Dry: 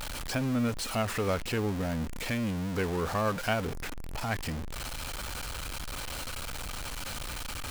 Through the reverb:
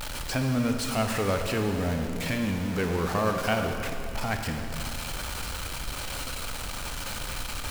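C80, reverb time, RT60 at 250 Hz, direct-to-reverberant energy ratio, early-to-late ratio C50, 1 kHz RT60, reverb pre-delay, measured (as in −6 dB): 5.5 dB, 2.6 s, 2.9 s, 4.0 dB, 5.0 dB, 2.6 s, 21 ms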